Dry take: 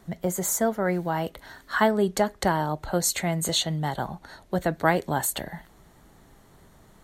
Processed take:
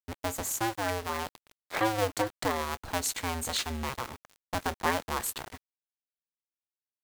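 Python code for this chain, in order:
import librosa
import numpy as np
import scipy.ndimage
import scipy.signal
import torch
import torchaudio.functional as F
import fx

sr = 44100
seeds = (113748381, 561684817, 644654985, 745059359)

y = fx.cycle_switch(x, sr, every=2, mode='inverted')
y = fx.rev_double_slope(y, sr, seeds[0], early_s=0.22, late_s=1.8, knee_db=-19, drr_db=13.5)
y = np.where(np.abs(y) >= 10.0 ** (-35.0 / 20.0), y, 0.0)
y = F.gain(torch.from_numpy(y), -6.5).numpy()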